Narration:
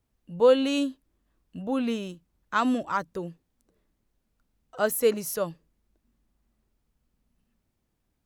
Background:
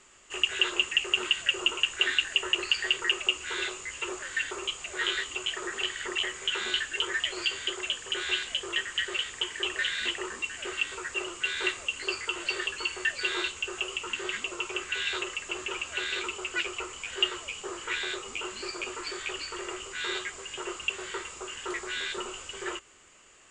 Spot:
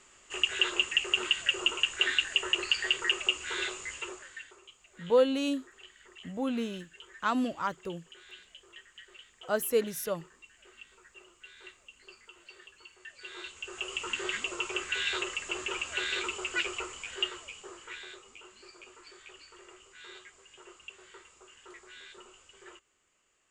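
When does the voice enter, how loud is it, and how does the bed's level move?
4.70 s, -4.5 dB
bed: 3.92 s -1.5 dB
4.63 s -21.5 dB
12.98 s -21.5 dB
14.02 s -0.5 dB
16.73 s -0.5 dB
18.44 s -16.5 dB

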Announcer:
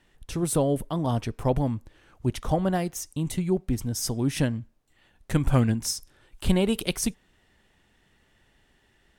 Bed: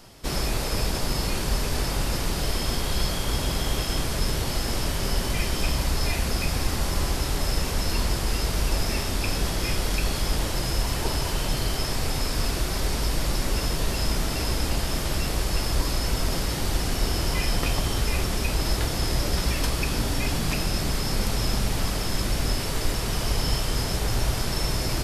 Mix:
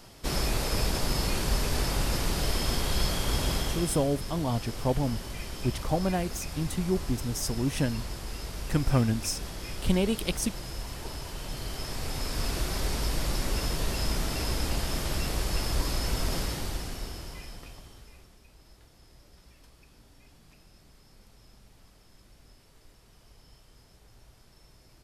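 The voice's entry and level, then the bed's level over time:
3.40 s, -3.0 dB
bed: 3.54 s -2 dB
4.12 s -12 dB
11.33 s -12 dB
12.58 s -4 dB
16.41 s -4 dB
18.41 s -31.5 dB

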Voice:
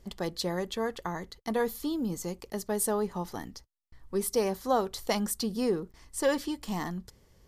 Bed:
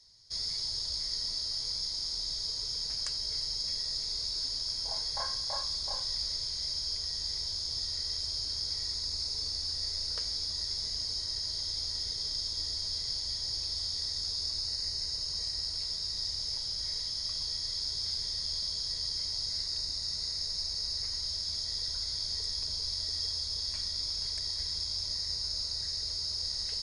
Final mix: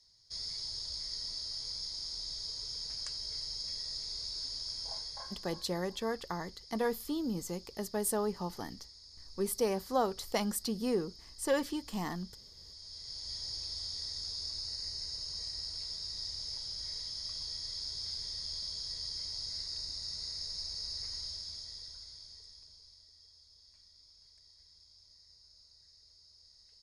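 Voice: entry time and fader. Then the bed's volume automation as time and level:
5.25 s, -3.5 dB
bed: 4.92 s -5.5 dB
5.81 s -20 dB
12.55 s -20 dB
13.35 s -5.5 dB
21.2 s -5.5 dB
23.13 s -26.5 dB

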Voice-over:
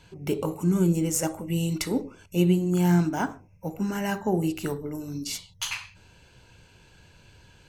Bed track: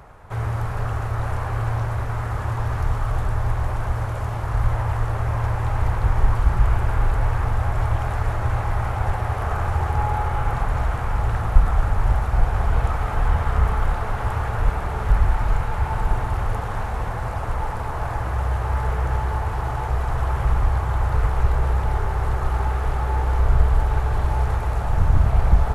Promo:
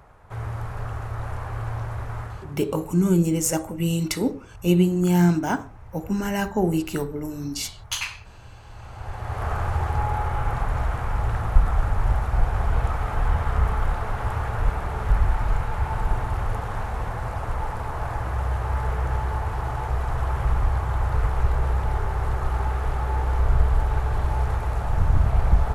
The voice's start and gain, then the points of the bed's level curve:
2.30 s, +3.0 dB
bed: 2.21 s -6 dB
2.7 s -23.5 dB
8.61 s -23.5 dB
9.44 s -2.5 dB

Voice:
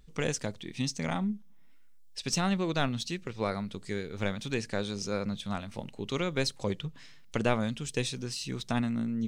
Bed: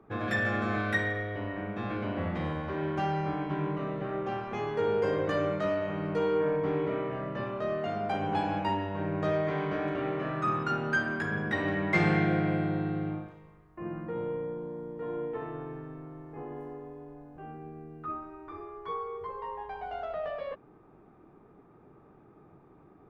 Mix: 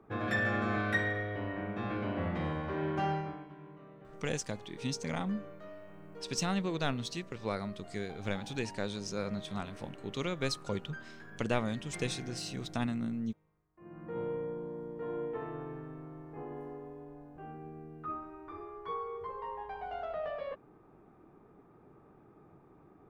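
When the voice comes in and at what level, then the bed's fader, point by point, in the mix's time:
4.05 s, -4.0 dB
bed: 3.12 s -2 dB
3.55 s -19.5 dB
13.74 s -19.5 dB
14.18 s -2.5 dB

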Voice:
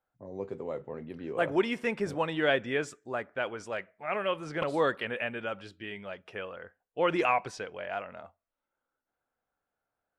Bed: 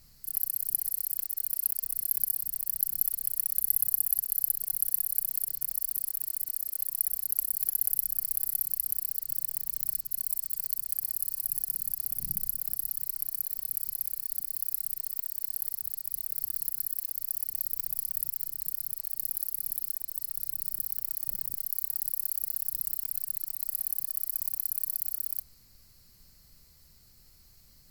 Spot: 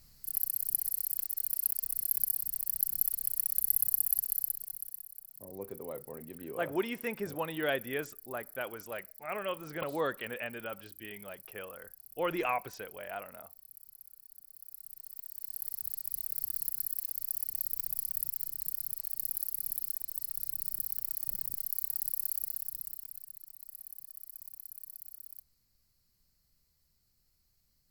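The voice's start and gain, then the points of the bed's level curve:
5.20 s, -5.5 dB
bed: 4.29 s -2 dB
5.2 s -20.5 dB
14.43 s -20.5 dB
15.88 s -2.5 dB
22.35 s -2.5 dB
23.36 s -15.5 dB

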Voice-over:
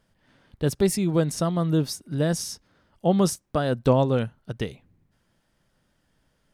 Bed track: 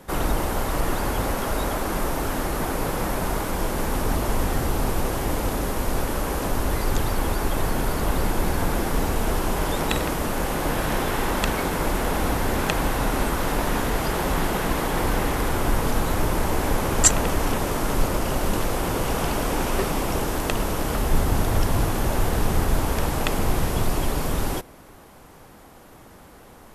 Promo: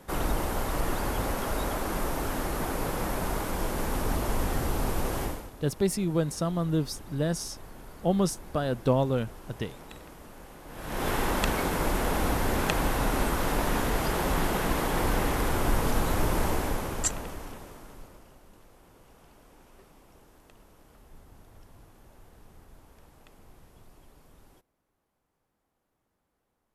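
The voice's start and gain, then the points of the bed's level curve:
5.00 s, -4.5 dB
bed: 5.24 s -5 dB
5.52 s -22.5 dB
10.66 s -22.5 dB
11.07 s -3.5 dB
16.47 s -3.5 dB
18.44 s -32 dB

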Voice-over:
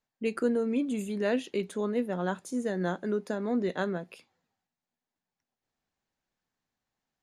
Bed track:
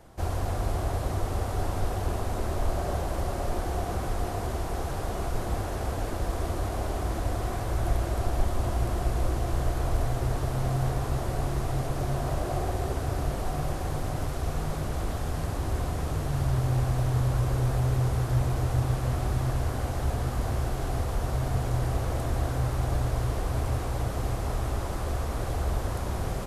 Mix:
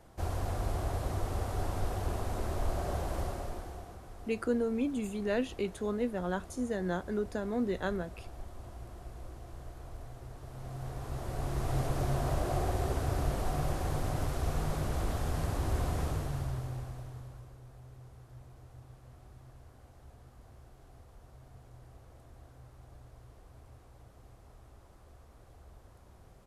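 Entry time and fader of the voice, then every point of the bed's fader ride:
4.05 s, -3.0 dB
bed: 3.22 s -5 dB
4 s -19 dB
10.36 s -19 dB
11.77 s -2.5 dB
16.03 s -2.5 dB
17.59 s -26.5 dB

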